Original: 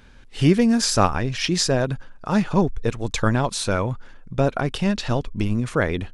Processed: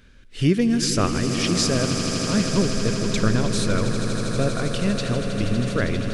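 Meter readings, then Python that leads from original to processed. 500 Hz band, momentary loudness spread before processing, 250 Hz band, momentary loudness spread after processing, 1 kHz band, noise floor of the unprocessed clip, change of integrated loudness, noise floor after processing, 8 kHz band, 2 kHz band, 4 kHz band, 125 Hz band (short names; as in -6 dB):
-1.0 dB, 9 LU, 0.0 dB, 4 LU, -5.0 dB, -45 dBFS, -0.5 dB, -45 dBFS, +1.5 dB, -1.0 dB, +1.0 dB, 0.0 dB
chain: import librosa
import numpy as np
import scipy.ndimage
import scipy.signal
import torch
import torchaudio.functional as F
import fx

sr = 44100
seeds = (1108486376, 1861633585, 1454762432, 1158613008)

y = fx.peak_eq(x, sr, hz=850.0, db=-13.0, octaves=0.54)
y = fx.echo_swell(y, sr, ms=80, loudest=8, wet_db=-12.5)
y = y * 10.0 ** (-2.0 / 20.0)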